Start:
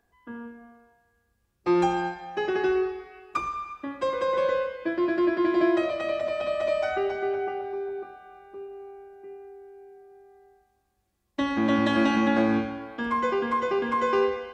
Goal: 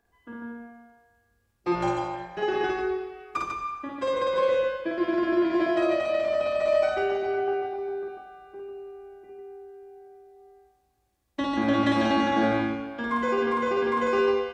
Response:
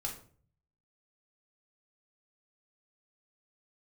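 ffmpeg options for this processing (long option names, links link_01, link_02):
-filter_complex "[0:a]aecho=1:1:52.48|145.8:0.891|0.631,asettb=1/sr,asplit=3[link_01][link_02][link_03];[link_01]atrim=end=1.754[link_04];[link_02]atrim=start=1.75:end=2.42,asetpts=PTS-STARTPTS,afade=type=in:duration=0.004:curve=qsin,afade=type=out:start_time=0.666:duration=0.004:curve=qsin,tremolo=f=230:d=0.71[link_05];[link_03]atrim=start=2.416[link_06];[link_04][link_05]acrossfade=duration=0.004:curve1=hsin:curve2=qsin[link_07];[link_07][link_06]acrossfade=duration=0.004:curve1=qsin:curve2=hsin,volume=-2dB"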